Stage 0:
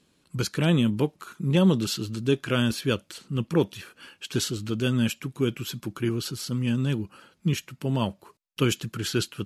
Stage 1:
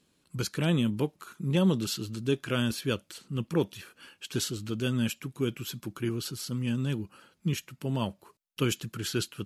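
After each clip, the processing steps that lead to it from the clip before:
high-shelf EQ 9,100 Hz +5 dB
level −4.5 dB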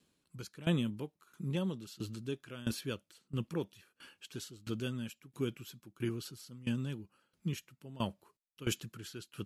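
tremolo with a ramp in dB decaying 1.5 Hz, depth 18 dB
level −3 dB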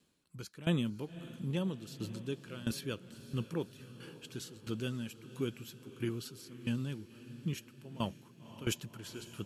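feedback delay with all-pass diffusion 534 ms, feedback 61%, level −15 dB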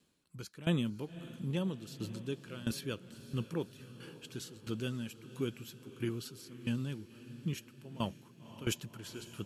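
no processing that can be heard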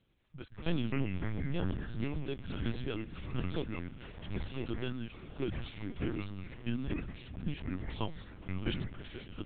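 delay with pitch and tempo change per echo 84 ms, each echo −4 semitones, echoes 3
linear-prediction vocoder at 8 kHz pitch kept

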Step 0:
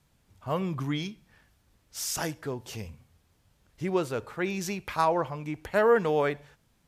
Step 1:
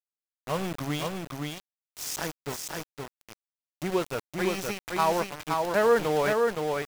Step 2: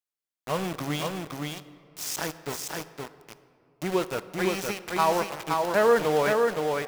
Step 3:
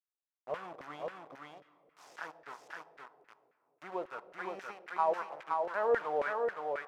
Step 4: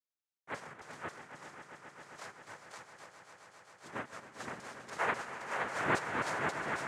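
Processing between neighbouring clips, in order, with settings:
centre clipping without the shift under −30 dBFS; single-tap delay 518 ms −3.5 dB
low-shelf EQ 80 Hz −8 dB; on a send at −14 dB: convolution reverb RT60 2.4 s, pre-delay 21 ms; on the sum: level +1.5 dB
auto-filter band-pass saw down 3.7 Hz 520–1,800 Hz; level −4 dB
cochlear-implant simulation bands 3; echo that builds up and dies away 134 ms, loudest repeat 5, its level −13 dB; level −3.5 dB

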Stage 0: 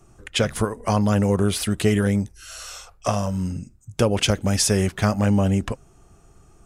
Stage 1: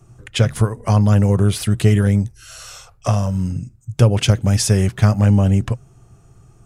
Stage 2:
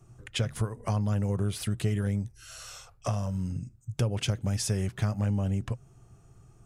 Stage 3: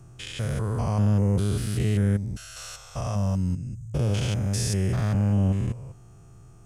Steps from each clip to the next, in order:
parametric band 120 Hz +14 dB 0.66 octaves
downward compressor 2 to 1, threshold −22 dBFS, peak gain reduction 8.5 dB; level −7.5 dB
spectrum averaged block by block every 200 ms; level +7 dB

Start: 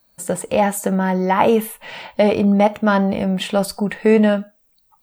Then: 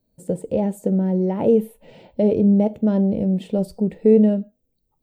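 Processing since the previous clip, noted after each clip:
drawn EQ curve 470 Hz 0 dB, 1,200 Hz −26 dB, 3,400 Hz −18 dB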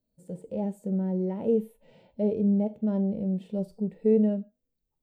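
harmonic and percussive parts rebalanced percussive −10 dB
level −8 dB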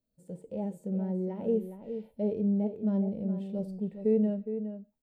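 slap from a distant wall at 71 metres, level −9 dB
level −4 dB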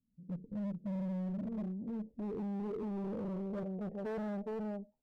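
tube saturation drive 39 dB, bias 0.45
low-pass filter sweep 210 Hz → 750 Hz, 0:01.47–0:04.12
hard clipping −37.5 dBFS, distortion −11 dB
level +2 dB

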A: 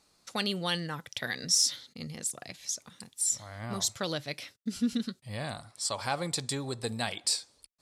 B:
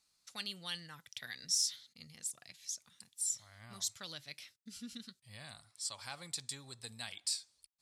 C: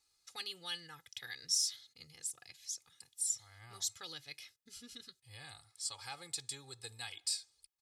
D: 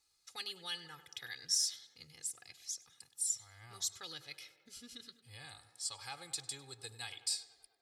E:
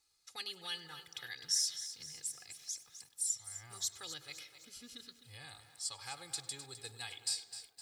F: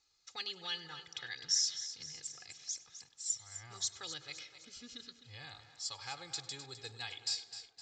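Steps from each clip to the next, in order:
guitar amp tone stack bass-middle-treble 5-5-5; level −1 dB
comb filter 2.4 ms, depth 84%; level −2.5 dB
tape delay 98 ms, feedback 79%, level −14 dB, low-pass 2,600 Hz
feedback echo at a low word length 257 ms, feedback 55%, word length 10 bits, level −11.5 dB
downsampling to 16,000 Hz; level +2 dB

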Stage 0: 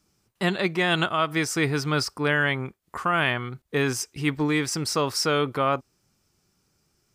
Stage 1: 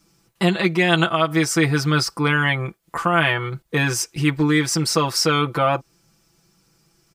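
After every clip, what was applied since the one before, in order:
comb filter 6 ms, depth 89%
in parallel at −0.5 dB: downward compressor, threshold −27 dBFS, peak gain reduction 13 dB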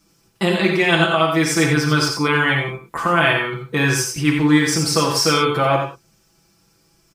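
on a send: single-tap delay 87 ms −7 dB
on the sum: reverb whose tail is shaped and stops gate 120 ms flat, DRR 2.5 dB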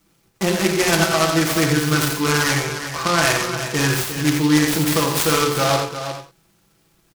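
single-tap delay 355 ms −9.5 dB
short delay modulated by noise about 3,400 Hz, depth 0.071 ms
level −1.5 dB

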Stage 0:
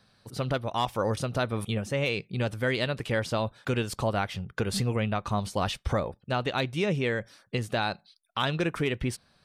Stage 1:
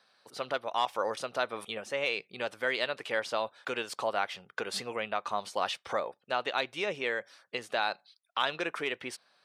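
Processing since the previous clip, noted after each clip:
high-pass filter 550 Hz 12 dB per octave
high-shelf EQ 8,700 Hz −11 dB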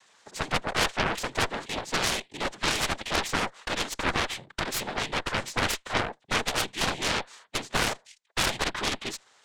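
cochlear-implant simulation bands 6
harmonic generator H 6 −7 dB, 7 −7 dB, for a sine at −16 dBFS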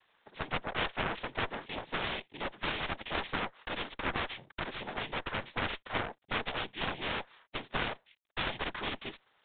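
level −6.5 dB
G.726 32 kbit/s 8,000 Hz

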